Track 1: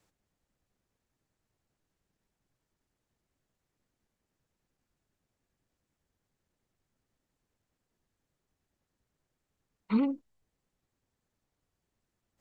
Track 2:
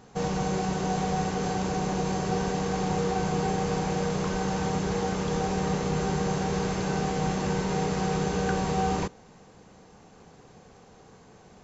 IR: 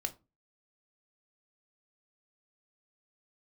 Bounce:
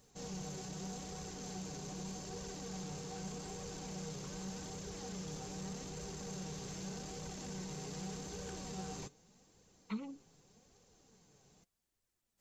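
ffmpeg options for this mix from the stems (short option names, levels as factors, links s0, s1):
-filter_complex "[0:a]acompressor=threshold=0.0224:ratio=6,volume=0.668[s0];[1:a]equalizer=f=1200:w=0.44:g=-7.5,asoftclip=type=tanh:threshold=0.0447,volume=0.355[s1];[s0][s1]amix=inputs=2:normalize=0,highshelf=f=3400:g=11.5,flanger=delay=1.6:depth=6.2:regen=45:speed=0.83:shape=triangular"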